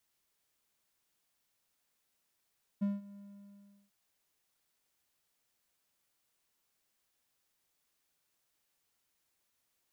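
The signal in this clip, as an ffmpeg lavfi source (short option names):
-f lavfi -i "aevalsrc='0.0531*(1-4*abs(mod(201*t+0.25,1)-0.5))':d=1.095:s=44100,afade=t=in:d=0.017,afade=t=out:st=0.017:d=0.181:silence=0.0944,afade=t=out:st=0.36:d=0.735"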